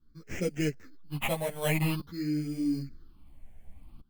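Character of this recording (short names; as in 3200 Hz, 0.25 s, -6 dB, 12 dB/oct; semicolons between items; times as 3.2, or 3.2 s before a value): aliases and images of a low sample rate 4600 Hz, jitter 0%; phasing stages 6, 0.49 Hz, lowest notch 330–1100 Hz; tremolo saw up 0.5 Hz, depth 90%; a shimmering, thickened sound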